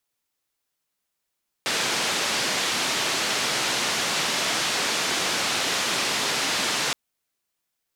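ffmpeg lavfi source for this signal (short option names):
-f lavfi -i "anoisesrc=c=white:d=5.27:r=44100:seed=1,highpass=f=160,lowpass=f=5300,volume=-14.2dB"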